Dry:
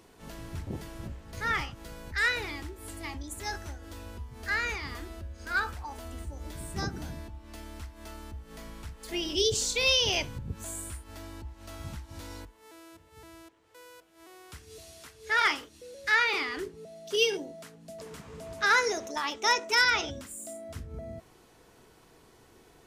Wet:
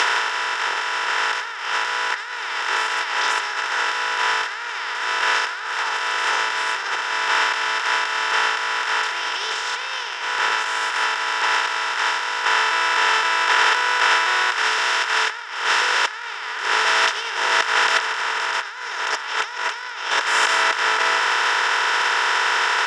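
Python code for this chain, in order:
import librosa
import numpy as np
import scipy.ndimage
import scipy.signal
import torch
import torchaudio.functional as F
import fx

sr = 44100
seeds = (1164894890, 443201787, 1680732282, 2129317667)

y = fx.bin_compress(x, sr, power=0.2)
y = fx.dynamic_eq(y, sr, hz=1100.0, q=1.1, threshold_db=-33.0, ratio=4.0, max_db=8)
y = fx.over_compress(y, sr, threshold_db=-23.0, ratio=-0.5)
y = fx.bandpass_edges(y, sr, low_hz=680.0, high_hz=7800.0)
y = y * 10.0 ** (5.0 / 20.0)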